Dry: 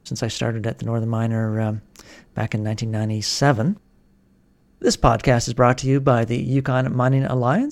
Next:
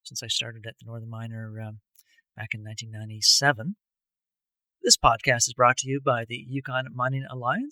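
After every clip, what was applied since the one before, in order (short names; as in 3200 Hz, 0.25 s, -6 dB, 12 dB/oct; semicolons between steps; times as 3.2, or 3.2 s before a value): per-bin expansion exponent 2; tilt shelf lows -9.5 dB, about 800 Hz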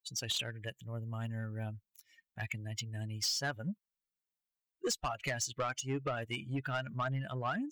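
compressor 8:1, threshold -26 dBFS, peak gain reduction 15 dB; soft clip -25.5 dBFS, distortion -13 dB; gain -2.5 dB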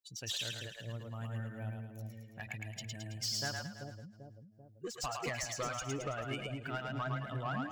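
on a send: split-band echo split 610 Hz, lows 0.389 s, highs 0.109 s, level -3 dB; on the sum: ending taper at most 130 dB/s; gain -3.5 dB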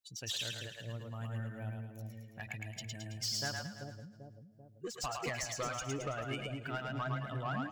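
feedback echo 0.125 s, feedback 49%, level -20 dB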